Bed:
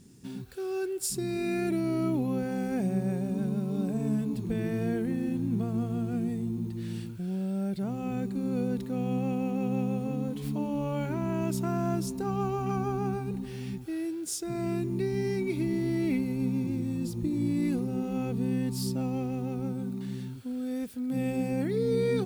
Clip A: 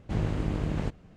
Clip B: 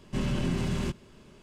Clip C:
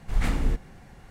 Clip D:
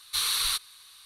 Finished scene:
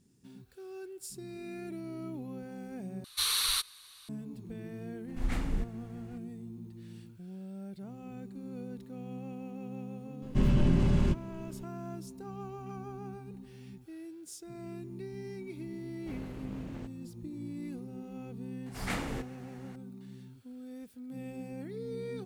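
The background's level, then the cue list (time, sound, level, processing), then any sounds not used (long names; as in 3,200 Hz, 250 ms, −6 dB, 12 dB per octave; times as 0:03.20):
bed −12.5 dB
0:03.04: overwrite with D −2.5 dB
0:05.08: mix in C −8 dB
0:10.22: mix in B −2 dB + spectral tilt −2 dB per octave
0:15.97: mix in A −12.5 dB + parametric band 92 Hz −5.5 dB 2.2 octaves
0:18.66: mix in C −1.5 dB + high-pass filter 290 Hz 6 dB per octave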